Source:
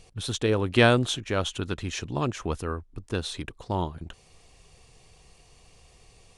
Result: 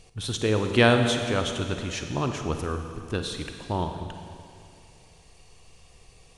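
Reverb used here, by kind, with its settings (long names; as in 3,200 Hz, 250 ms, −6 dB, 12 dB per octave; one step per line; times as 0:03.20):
four-comb reverb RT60 2.4 s, DRR 5.5 dB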